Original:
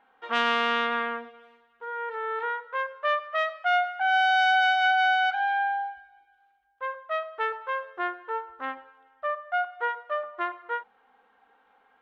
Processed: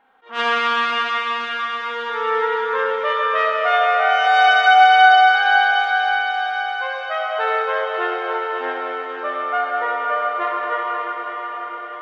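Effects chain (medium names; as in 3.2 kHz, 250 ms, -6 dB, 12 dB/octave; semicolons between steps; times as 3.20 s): echo that smears into a reverb 568 ms, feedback 64%, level -6.5 dB; Schroeder reverb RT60 4 s, combs from 28 ms, DRR -3 dB; attacks held to a fixed rise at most 200 dB/s; trim +3 dB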